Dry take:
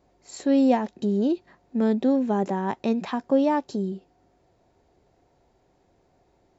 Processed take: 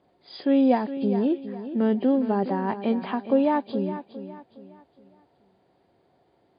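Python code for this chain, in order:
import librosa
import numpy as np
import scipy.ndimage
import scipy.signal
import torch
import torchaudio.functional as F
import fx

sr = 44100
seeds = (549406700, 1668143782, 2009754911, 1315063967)

y = fx.freq_compress(x, sr, knee_hz=2100.0, ratio=1.5)
y = scipy.signal.sosfilt(scipy.signal.butter(2, 120.0, 'highpass', fs=sr, output='sos'), y)
y = fx.echo_feedback(y, sr, ms=413, feedback_pct=36, wet_db=-12.0)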